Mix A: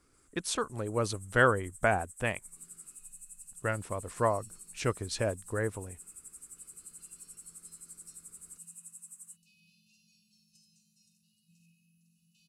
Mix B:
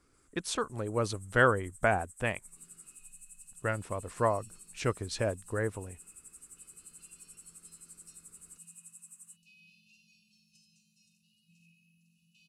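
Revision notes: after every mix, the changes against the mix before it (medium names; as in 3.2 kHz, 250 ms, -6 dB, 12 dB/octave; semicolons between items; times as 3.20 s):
second sound: add peaking EQ 2.5 kHz +8.5 dB 0.79 oct; master: add treble shelf 8.1 kHz -5.5 dB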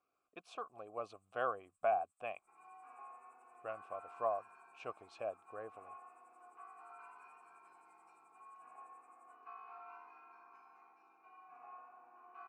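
second sound: remove brick-wall FIR band-stop 210–2500 Hz; master: add vowel filter a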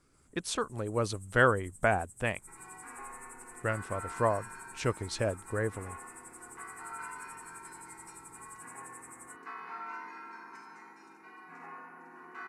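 first sound: remove steep high-pass 1.1 kHz; master: remove vowel filter a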